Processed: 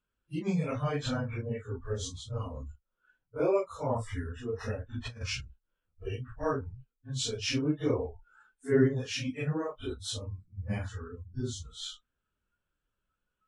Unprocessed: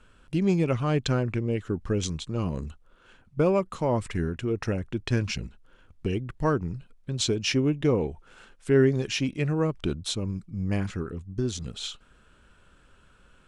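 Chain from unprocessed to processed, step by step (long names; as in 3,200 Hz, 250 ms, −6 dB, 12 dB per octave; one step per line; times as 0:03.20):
random phases in long frames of 100 ms
noise reduction from a noise print of the clip's start 22 dB
0:04.94–0:05.41: compressor whose output falls as the input rises −31 dBFS, ratio −0.5
level −5 dB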